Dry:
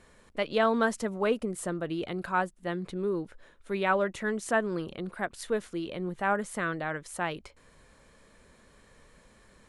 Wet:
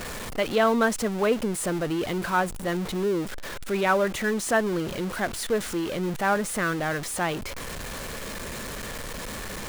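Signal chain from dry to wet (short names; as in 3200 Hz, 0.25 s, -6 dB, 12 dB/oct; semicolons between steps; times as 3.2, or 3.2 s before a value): zero-crossing step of -32 dBFS; gain +2.5 dB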